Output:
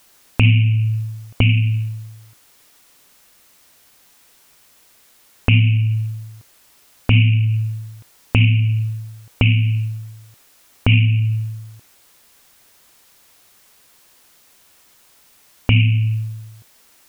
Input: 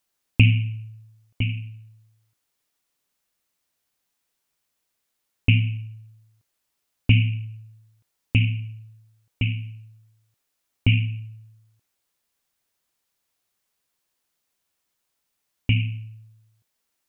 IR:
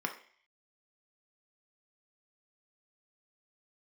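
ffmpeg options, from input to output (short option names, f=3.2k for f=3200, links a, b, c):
-filter_complex "[0:a]acompressor=threshold=-35dB:ratio=4,asplit=2[a][b];[1:a]atrim=start_sample=2205,afade=t=out:st=0.17:d=0.01,atrim=end_sample=7938[c];[b][c]afir=irnorm=-1:irlink=0,volume=-23.5dB[d];[a][d]amix=inputs=2:normalize=0,alimiter=level_in=25dB:limit=-1dB:release=50:level=0:latency=1,volume=-1dB"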